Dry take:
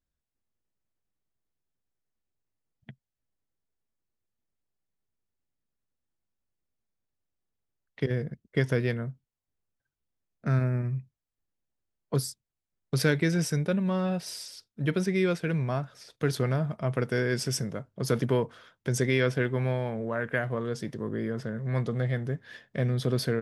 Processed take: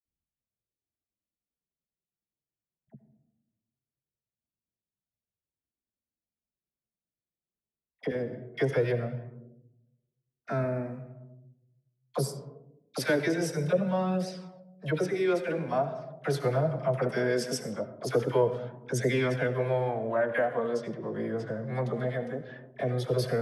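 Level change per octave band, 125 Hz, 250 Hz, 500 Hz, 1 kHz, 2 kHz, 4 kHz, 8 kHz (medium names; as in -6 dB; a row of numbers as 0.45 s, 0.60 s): -5.0 dB, -2.5 dB, +2.5 dB, +4.0 dB, -2.0 dB, -3.5 dB, -4.0 dB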